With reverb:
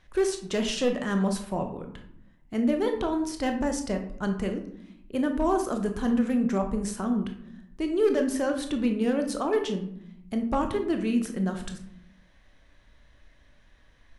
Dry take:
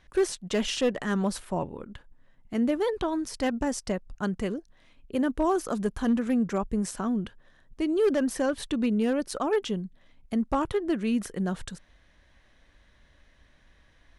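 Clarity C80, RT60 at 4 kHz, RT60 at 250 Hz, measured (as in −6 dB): 12.5 dB, 0.40 s, 1.1 s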